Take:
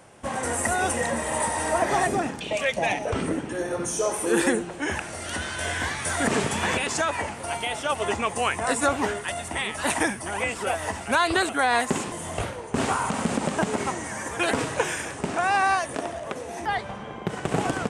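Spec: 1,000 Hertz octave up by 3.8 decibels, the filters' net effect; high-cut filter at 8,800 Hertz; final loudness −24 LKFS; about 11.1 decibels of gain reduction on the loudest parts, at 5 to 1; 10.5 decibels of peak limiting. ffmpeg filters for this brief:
ffmpeg -i in.wav -af "lowpass=8800,equalizer=frequency=1000:width_type=o:gain=5,acompressor=threshold=-28dB:ratio=5,volume=10.5dB,alimiter=limit=-14.5dB:level=0:latency=1" out.wav

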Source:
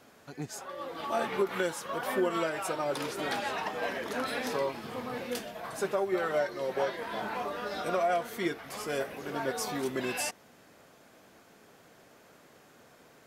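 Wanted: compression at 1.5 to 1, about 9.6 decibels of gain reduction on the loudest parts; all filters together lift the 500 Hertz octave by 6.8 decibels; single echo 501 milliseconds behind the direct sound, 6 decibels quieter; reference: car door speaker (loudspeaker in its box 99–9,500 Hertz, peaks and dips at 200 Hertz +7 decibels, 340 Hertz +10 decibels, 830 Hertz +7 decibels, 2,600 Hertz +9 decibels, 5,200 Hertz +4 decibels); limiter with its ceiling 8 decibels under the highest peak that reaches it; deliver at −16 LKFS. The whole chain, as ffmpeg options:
ffmpeg -i in.wav -af "equalizer=frequency=500:width_type=o:gain=4.5,acompressor=threshold=-49dB:ratio=1.5,alimiter=level_in=6dB:limit=-24dB:level=0:latency=1,volume=-6dB,highpass=99,equalizer=frequency=200:width_type=q:width=4:gain=7,equalizer=frequency=340:width_type=q:width=4:gain=10,equalizer=frequency=830:width_type=q:width=4:gain=7,equalizer=frequency=2600:width_type=q:width=4:gain=9,equalizer=frequency=5200:width_type=q:width=4:gain=4,lowpass=frequency=9500:width=0.5412,lowpass=frequency=9500:width=1.3066,aecho=1:1:501:0.501,volume=20dB" out.wav

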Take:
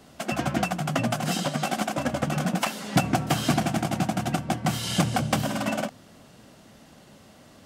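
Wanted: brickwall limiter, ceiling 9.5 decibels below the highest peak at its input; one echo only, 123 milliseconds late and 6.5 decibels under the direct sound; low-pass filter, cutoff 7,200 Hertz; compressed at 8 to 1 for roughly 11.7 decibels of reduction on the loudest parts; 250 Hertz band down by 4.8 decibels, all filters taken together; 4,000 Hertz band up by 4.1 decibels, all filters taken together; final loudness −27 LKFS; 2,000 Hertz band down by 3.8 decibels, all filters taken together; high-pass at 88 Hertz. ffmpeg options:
ffmpeg -i in.wav -af "highpass=88,lowpass=7200,equalizer=frequency=250:width_type=o:gain=-6.5,equalizer=frequency=2000:width_type=o:gain=-8.5,equalizer=frequency=4000:width_type=o:gain=9,acompressor=threshold=-32dB:ratio=8,alimiter=level_in=3.5dB:limit=-24dB:level=0:latency=1,volume=-3.5dB,aecho=1:1:123:0.473,volume=10.5dB" out.wav

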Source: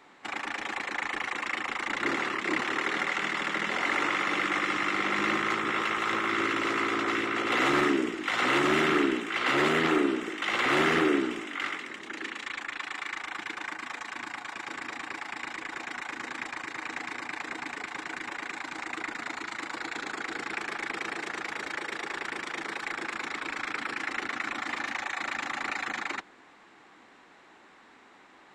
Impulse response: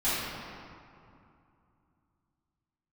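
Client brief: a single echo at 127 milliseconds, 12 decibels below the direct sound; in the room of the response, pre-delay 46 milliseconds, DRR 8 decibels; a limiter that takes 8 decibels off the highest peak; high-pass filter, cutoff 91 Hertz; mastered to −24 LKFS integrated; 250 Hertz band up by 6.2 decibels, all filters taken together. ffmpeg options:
-filter_complex "[0:a]highpass=91,equalizer=frequency=250:width_type=o:gain=8.5,alimiter=limit=-18dB:level=0:latency=1,aecho=1:1:127:0.251,asplit=2[link_01][link_02];[1:a]atrim=start_sample=2205,adelay=46[link_03];[link_02][link_03]afir=irnorm=-1:irlink=0,volume=-20dB[link_04];[link_01][link_04]amix=inputs=2:normalize=0,volume=5dB"

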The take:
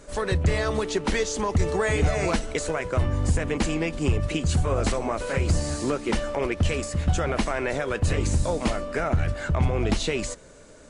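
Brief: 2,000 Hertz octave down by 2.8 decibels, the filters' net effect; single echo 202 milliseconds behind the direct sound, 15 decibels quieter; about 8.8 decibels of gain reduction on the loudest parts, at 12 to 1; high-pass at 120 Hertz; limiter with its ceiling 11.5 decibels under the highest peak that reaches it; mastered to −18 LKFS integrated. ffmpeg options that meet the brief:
ffmpeg -i in.wav -af "highpass=120,equalizer=frequency=2000:width_type=o:gain=-3.5,acompressor=threshold=-29dB:ratio=12,alimiter=level_in=5dB:limit=-24dB:level=0:latency=1,volume=-5dB,aecho=1:1:202:0.178,volume=20dB" out.wav

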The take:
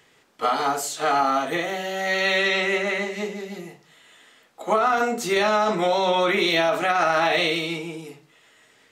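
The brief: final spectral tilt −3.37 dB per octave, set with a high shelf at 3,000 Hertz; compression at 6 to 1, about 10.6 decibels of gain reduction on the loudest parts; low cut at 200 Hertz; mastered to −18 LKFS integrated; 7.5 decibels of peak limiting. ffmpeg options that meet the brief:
ffmpeg -i in.wav -af "highpass=200,highshelf=frequency=3000:gain=-7,acompressor=threshold=-29dB:ratio=6,volume=17dB,alimiter=limit=-9.5dB:level=0:latency=1" out.wav

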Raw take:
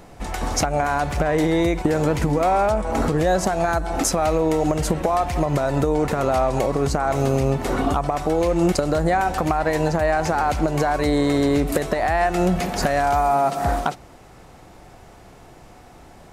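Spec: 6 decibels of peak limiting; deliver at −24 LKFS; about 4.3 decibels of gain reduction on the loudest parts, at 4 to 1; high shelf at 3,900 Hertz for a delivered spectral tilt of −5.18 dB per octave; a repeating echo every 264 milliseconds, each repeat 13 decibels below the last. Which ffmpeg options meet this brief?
ffmpeg -i in.wav -af "highshelf=frequency=3900:gain=4,acompressor=threshold=-20dB:ratio=4,alimiter=limit=-16dB:level=0:latency=1,aecho=1:1:264|528|792:0.224|0.0493|0.0108,volume=1.5dB" out.wav

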